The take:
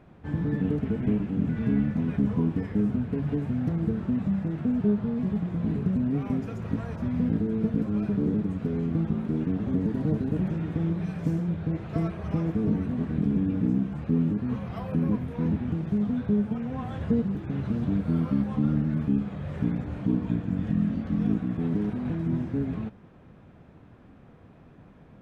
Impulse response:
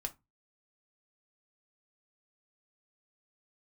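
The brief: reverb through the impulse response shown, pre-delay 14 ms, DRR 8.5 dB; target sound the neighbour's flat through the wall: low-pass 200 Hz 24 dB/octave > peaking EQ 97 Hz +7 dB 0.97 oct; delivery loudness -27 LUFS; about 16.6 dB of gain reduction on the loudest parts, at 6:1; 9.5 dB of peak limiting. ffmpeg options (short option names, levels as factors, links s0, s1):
-filter_complex "[0:a]acompressor=threshold=0.0112:ratio=6,alimiter=level_in=4.47:limit=0.0631:level=0:latency=1,volume=0.224,asplit=2[s0][s1];[1:a]atrim=start_sample=2205,adelay=14[s2];[s1][s2]afir=irnorm=-1:irlink=0,volume=0.398[s3];[s0][s3]amix=inputs=2:normalize=0,lowpass=f=200:w=0.5412,lowpass=f=200:w=1.3066,equalizer=f=97:t=o:w=0.97:g=7,volume=8.41"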